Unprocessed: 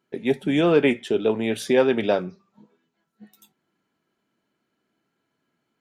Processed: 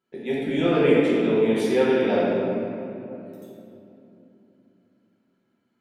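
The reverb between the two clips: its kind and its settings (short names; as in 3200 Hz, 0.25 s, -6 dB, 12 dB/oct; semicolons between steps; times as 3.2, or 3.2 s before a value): shoebox room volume 130 m³, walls hard, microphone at 1 m; gain -9 dB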